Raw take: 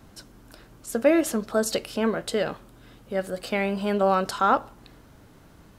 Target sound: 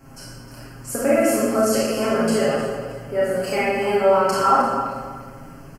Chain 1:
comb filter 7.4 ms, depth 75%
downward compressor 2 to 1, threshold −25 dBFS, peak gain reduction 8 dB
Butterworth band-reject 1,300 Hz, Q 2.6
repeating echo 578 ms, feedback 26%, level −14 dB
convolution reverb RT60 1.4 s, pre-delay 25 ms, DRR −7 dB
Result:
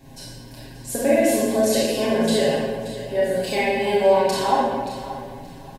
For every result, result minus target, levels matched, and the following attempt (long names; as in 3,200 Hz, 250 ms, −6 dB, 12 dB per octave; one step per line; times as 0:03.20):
echo 268 ms late; 4,000 Hz band +4.5 dB
comb filter 7.4 ms, depth 75%
downward compressor 2 to 1, threshold −25 dBFS, peak gain reduction 8 dB
Butterworth band-reject 1,300 Hz, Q 2.6
repeating echo 310 ms, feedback 26%, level −14 dB
convolution reverb RT60 1.4 s, pre-delay 25 ms, DRR −7 dB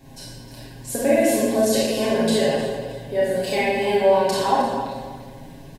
4,000 Hz band +4.5 dB
comb filter 7.4 ms, depth 75%
downward compressor 2 to 1, threshold −25 dBFS, peak gain reduction 8 dB
Butterworth band-reject 3,700 Hz, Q 2.6
repeating echo 310 ms, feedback 26%, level −14 dB
convolution reverb RT60 1.4 s, pre-delay 25 ms, DRR −7 dB